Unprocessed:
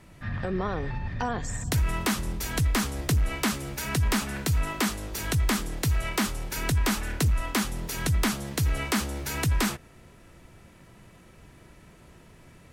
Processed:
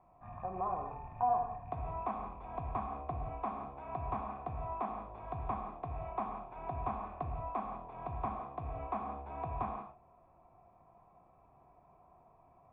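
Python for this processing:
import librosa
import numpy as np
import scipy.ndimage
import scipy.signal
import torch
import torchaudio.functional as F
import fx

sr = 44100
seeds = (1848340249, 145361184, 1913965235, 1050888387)

y = fx.rattle_buzz(x, sr, strikes_db=-29.0, level_db=-31.0)
y = fx.formant_cascade(y, sr, vowel='a')
y = fx.peak_eq(y, sr, hz=810.0, db=-4.5, octaves=2.5)
y = fx.rev_gated(y, sr, seeds[0], gate_ms=210, shape='flat', drr_db=3.0)
y = F.gain(torch.from_numpy(y), 9.0).numpy()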